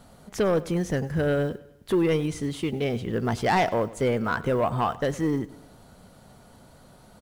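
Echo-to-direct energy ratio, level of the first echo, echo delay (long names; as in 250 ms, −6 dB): −18.5 dB, −19.5 dB, 100 ms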